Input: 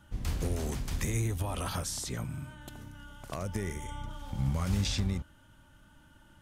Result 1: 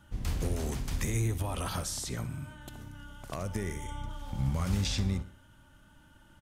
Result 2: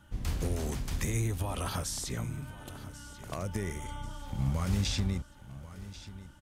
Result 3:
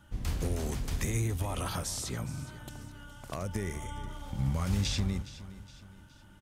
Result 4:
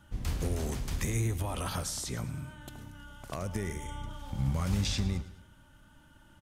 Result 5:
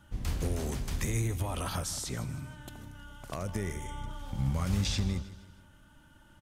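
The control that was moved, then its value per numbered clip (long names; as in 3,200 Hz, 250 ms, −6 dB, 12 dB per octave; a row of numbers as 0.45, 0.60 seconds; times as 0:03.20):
repeating echo, delay time: 62, 1,089, 416, 106, 157 milliseconds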